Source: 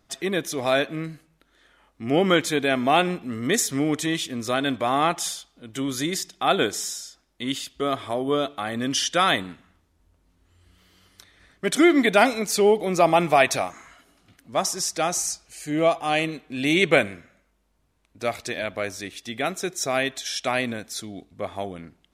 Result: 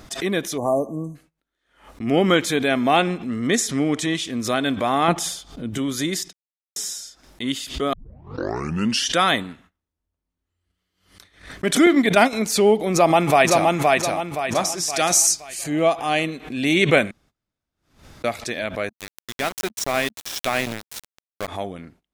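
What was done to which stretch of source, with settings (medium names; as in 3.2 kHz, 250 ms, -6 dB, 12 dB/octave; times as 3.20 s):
0.58–1.15 s: spectral selection erased 1.2–5.9 kHz
2.96–4.32 s: low-pass 9.5 kHz
5.08–5.78 s: bass shelf 500 Hz +10.5 dB
6.33–6.76 s: mute
7.93 s: tape start 1.12 s
11.86–12.33 s: gate -20 dBFS, range -9 dB
12.92–13.68 s: echo throw 520 ms, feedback 40%, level -2 dB
14.90–15.64 s: treble shelf 2.6 kHz +9.5 dB
17.11–18.24 s: room tone
18.89–21.48 s: small samples zeroed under -26 dBFS
whole clip: gate -52 dBFS, range -21 dB; dynamic bell 220 Hz, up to +5 dB, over -41 dBFS, Q 4.2; swell ahead of each attack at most 120 dB/s; trim +1.5 dB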